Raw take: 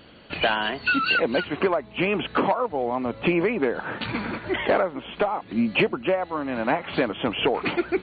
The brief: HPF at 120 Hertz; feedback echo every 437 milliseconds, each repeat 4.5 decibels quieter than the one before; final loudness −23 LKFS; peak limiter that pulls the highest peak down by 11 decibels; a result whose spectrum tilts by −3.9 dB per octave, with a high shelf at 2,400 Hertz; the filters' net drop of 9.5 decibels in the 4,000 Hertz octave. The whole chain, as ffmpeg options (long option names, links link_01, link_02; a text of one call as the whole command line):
ffmpeg -i in.wav -af "highpass=120,highshelf=frequency=2400:gain=-8.5,equalizer=frequency=4000:width_type=o:gain=-7,alimiter=limit=-22.5dB:level=0:latency=1,aecho=1:1:437|874|1311|1748|2185|2622|3059|3496|3933:0.596|0.357|0.214|0.129|0.0772|0.0463|0.0278|0.0167|0.01,volume=7dB" out.wav